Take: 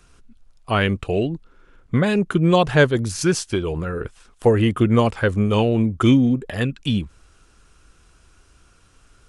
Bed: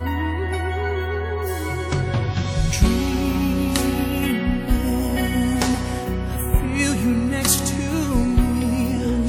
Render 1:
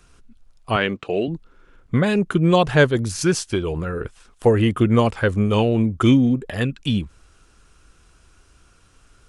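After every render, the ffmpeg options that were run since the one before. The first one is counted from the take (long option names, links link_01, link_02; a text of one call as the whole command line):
ffmpeg -i in.wav -filter_complex "[0:a]asettb=1/sr,asplit=3[link_01][link_02][link_03];[link_01]atrim=end=0.764[link_04];[link_02]atrim=start=0.76:end=1.28,asetpts=PTS-STARTPTS,afade=type=in:duration=0.004:curve=qsin,afade=type=out:start_time=0.516:duration=0.004:curve=qsin,highpass=220,lowpass=5700[link_05];[link_03]atrim=start=1.276[link_06];[link_04][link_05]acrossfade=duration=0.004:curve1=hsin:curve2=qsin[link_07];[link_07][link_06]acrossfade=duration=0.004:curve1=qsin:curve2=hsin" out.wav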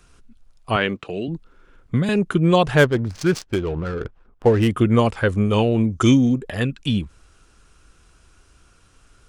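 ffmpeg -i in.wav -filter_complex "[0:a]asettb=1/sr,asplit=3[link_01][link_02][link_03];[link_01]atrim=end=1.024[link_04];[link_02]atrim=start=1.02:end=2.09,asetpts=PTS-STARTPTS,afade=type=in:duration=0.004:curve=qsin,afade=type=out:start_time=1.066:duration=0.004:curve=qsin,acrossover=split=300|3000[link_05][link_06][link_07];[link_06]acompressor=threshold=-30dB:ratio=6:attack=3.2:release=140:knee=2.83:detection=peak[link_08];[link_05][link_08][link_07]amix=inputs=3:normalize=0[link_09];[link_03]atrim=start=2.086[link_10];[link_04][link_09]acrossfade=duration=0.004:curve1=hsin:curve2=qsin[link_11];[link_11][link_10]acrossfade=duration=0.004:curve1=qsin:curve2=hsin,asplit=3[link_12][link_13][link_14];[link_12]afade=type=out:start_time=2.77:duration=0.02[link_15];[link_13]adynamicsmooth=sensitivity=3.5:basefreq=860,afade=type=in:start_time=2.77:duration=0.02,afade=type=out:start_time=4.67:duration=0.02[link_16];[link_14]afade=type=in:start_time=4.67:duration=0.02[link_17];[link_15][link_16][link_17]amix=inputs=3:normalize=0,asettb=1/sr,asplit=3[link_18][link_19][link_20];[link_18]atrim=end=5.904[link_21];[link_19]atrim=start=5.9:end=6.38,asetpts=PTS-STARTPTS,afade=type=in:duration=0.004:curve=qsin,afade=type=out:start_time=0.476:duration=0.004:curve=qsin,equalizer=frequency=6200:width_type=o:width=0.68:gain=12.5[link_22];[link_20]atrim=start=6.376[link_23];[link_21][link_22]acrossfade=duration=0.004:curve1=hsin:curve2=qsin[link_24];[link_24][link_23]acrossfade=duration=0.004:curve1=qsin:curve2=hsin" out.wav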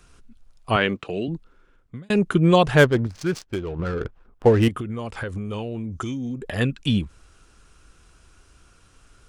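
ffmpeg -i in.wav -filter_complex "[0:a]asettb=1/sr,asplit=3[link_01][link_02][link_03];[link_01]atrim=end=4.684[link_04];[link_02]atrim=start=4.68:end=6.41,asetpts=PTS-STARTPTS,afade=type=in:duration=0.004:curve=qsin,afade=type=out:start_time=1.726:duration=0.004:curve=qsin,acompressor=threshold=-26dB:ratio=8:attack=3.2:release=140:knee=1:detection=peak[link_05];[link_03]atrim=start=6.406[link_06];[link_04][link_05]acrossfade=duration=0.004:curve1=hsin:curve2=qsin[link_07];[link_07][link_06]acrossfade=duration=0.004:curve1=qsin:curve2=hsin,asplit=4[link_08][link_09][link_10][link_11];[link_08]atrim=end=2.1,asetpts=PTS-STARTPTS,afade=type=out:start_time=1.22:duration=0.88[link_12];[link_09]atrim=start=2.1:end=3.072,asetpts=PTS-STARTPTS,afade=type=in:duration=0.004:curve=hsin[link_13];[link_10]atrim=start=3.068:end=3.792,asetpts=PTS-STARTPTS,volume=-5.5dB[link_14];[link_11]atrim=start=3.788[link_15];[link_12][link_13]concat=n=2:v=0:a=1[link_16];[link_16][link_14]acrossfade=duration=0.004:curve1=hsin:curve2=hsin[link_17];[link_17][link_15]acrossfade=duration=0.004:curve1=hsin:curve2=hsin" out.wav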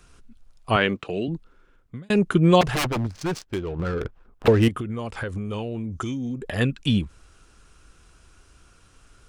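ffmpeg -i in.wav -filter_complex "[0:a]asettb=1/sr,asplit=3[link_01][link_02][link_03];[link_01]atrim=end=2.614[link_04];[link_02]atrim=start=2.61:end=4.48,asetpts=PTS-STARTPTS,afade=type=in:duration=0.004:curve=qsin,afade=type=out:start_time=1.866:duration=0.004:curve=qsin,aeval=exprs='0.112*(abs(mod(val(0)/0.112+3,4)-2)-1)':channel_layout=same[link_05];[link_03]atrim=start=4.476[link_06];[link_04][link_05]acrossfade=duration=0.004:curve1=hsin:curve2=qsin[link_07];[link_07][link_06]acrossfade=duration=0.004:curve1=qsin:curve2=hsin" out.wav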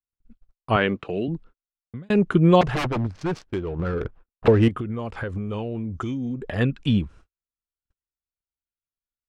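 ffmpeg -i in.wav -af "agate=range=-50dB:threshold=-44dB:ratio=16:detection=peak,aemphasis=mode=reproduction:type=75fm" out.wav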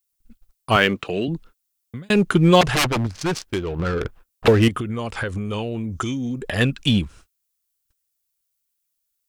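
ffmpeg -i in.wav -filter_complex "[0:a]asplit=2[link_01][link_02];[link_02]asoftclip=type=hard:threshold=-19dB,volume=-11.5dB[link_03];[link_01][link_03]amix=inputs=2:normalize=0,crystalizer=i=5.5:c=0" out.wav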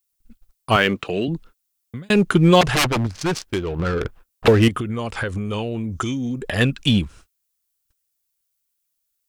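ffmpeg -i in.wav -af "volume=1dB,alimiter=limit=-3dB:level=0:latency=1" out.wav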